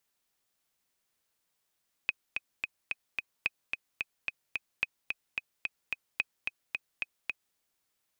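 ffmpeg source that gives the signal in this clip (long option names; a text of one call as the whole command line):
ffmpeg -f lavfi -i "aevalsrc='pow(10,(-14-4.5*gte(mod(t,5*60/219),60/219))/20)*sin(2*PI*2520*mod(t,60/219))*exp(-6.91*mod(t,60/219)/0.03)':duration=5.47:sample_rate=44100" out.wav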